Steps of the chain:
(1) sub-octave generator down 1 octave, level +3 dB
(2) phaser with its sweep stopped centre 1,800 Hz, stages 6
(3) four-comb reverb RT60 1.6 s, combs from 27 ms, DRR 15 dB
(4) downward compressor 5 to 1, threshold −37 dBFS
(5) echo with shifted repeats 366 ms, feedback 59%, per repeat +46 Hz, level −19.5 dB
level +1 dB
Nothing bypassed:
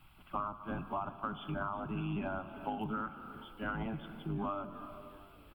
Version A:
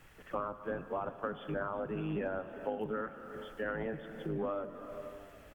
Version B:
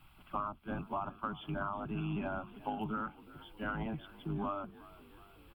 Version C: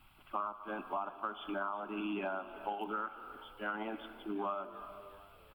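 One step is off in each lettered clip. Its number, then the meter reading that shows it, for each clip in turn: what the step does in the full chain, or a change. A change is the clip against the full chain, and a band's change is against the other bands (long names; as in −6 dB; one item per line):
2, 500 Hz band +9.0 dB
3, change in momentary loudness spread +5 LU
1, 250 Hz band −4.0 dB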